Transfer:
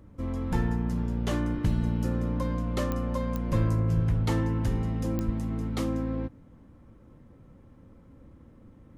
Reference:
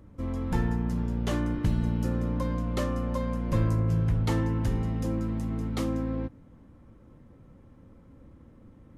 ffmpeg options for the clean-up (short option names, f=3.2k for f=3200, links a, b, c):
-filter_complex "[0:a]adeclick=t=4,asplit=3[a][b][c];[a]afade=t=out:st=3.95:d=0.02[d];[b]highpass=f=140:w=0.5412,highpass=f=140:w=1.3066,afade=t=in:st=3.95:d=0.02,afade=t=out:st=4.07:d=0.02[e];[c]afade=t=in:st=4.07:d=0.02[f];[d][e][f]amix=inputs=3:normalize=0,asplit=3[g][h][i];[g]afade=t=out:st=5.25:d=0.02[j];[h]highpass=f=140:w=0.5412,highpass=f=140:w=1.3066,afade=t=in:st=5.25:d=0.02,afade=t=out:st=5.37:d=0.02[k];[i]afade=t=in:st=5.37:d=0.02[l];[j][k][l]amix=inputs=3:normalize=0"